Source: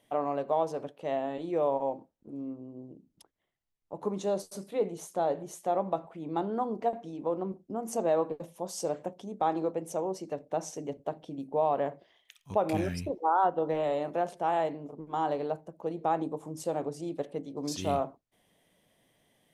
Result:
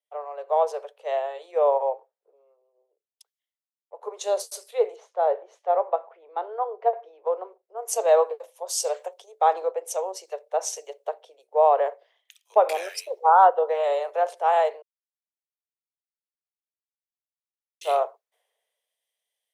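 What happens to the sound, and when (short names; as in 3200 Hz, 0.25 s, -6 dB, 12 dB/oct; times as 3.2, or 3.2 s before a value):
4.96–7.25 air absorption 220 m
14.82–17.81 mute
whole clip: AGC gain up to 6.5 dB; steep high-pass 430 Hz 72 dB/oct; three-band expander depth 70%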